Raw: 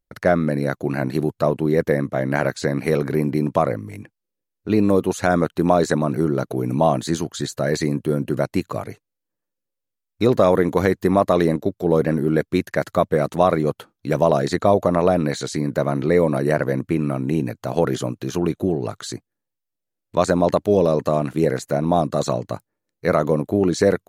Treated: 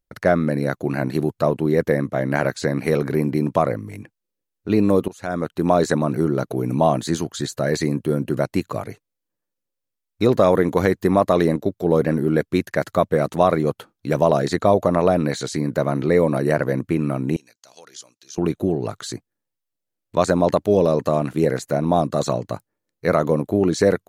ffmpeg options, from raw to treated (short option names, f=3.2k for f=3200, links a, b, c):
-filter_complex "[0:a]asettb=1/sr,asplit=3[a][b][c];[a]atrim=end=17.364[d];[b]atrim=start=17.36:end=18.38,asetpts=PTS-STARTPTS,afade=t=in:d=0.004:c=qsin,afade=t=out:st=1.016:d=0.004:c=qsin,bandpass=f=5.7k:t=q:w=2.2[e];[c]atrim=start=18.376[f];[d][e]acrossfade=d=0.004:c1=hsin:c2=qsin[g];[g][f]acrossfade=d=0.004:c1=qsin:c2=hsin,asplit=2[h][i];[h]atrim=end=5.08,asetpts=PTS-STARTPTS,afade=t=out:st=5.076:d=0.004:c=hsin:silence=0.105925[j];[i]atrim=start=5.08,asetpts=PTS-STARTPTS,afade=t=in:d=0.69:silence=0.105925[k];[j][k]concat=n=2:v=0:a=1"